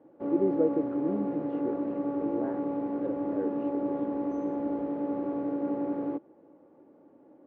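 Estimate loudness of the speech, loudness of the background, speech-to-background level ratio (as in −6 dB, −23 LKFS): −33.5 LKFS, −32.0 LKFS, −1.5 dB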